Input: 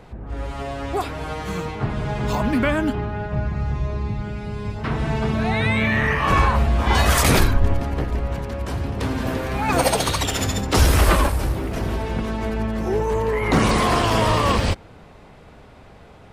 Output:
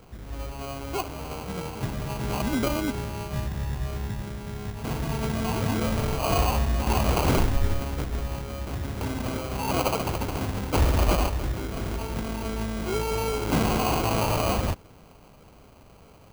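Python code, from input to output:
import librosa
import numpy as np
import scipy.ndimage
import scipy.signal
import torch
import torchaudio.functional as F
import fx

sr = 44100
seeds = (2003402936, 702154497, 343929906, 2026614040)

y = fx.sample_hold(x, sr, seeds[0], rate_hz=1800.0, jitter_pct=0)
y = F.gain(torch.from_numpy(y), -6.0).numpy()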